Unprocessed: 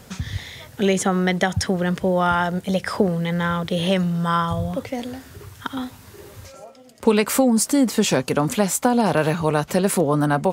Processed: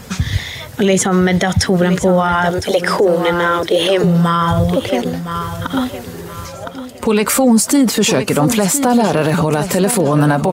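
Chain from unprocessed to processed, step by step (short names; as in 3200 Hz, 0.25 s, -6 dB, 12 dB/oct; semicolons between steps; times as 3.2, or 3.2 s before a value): bin magnitudes rounded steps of 15 dB; 2.5–4.04 resonant low shelf 250 Hz -9 dB, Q 3; 4.9–5.43 transient shaper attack -2 dB, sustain -8 dB; feedback echo 1.011 s, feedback 29%, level -12.5 dB; maximiser +14.5 dB; gain -3.5 dB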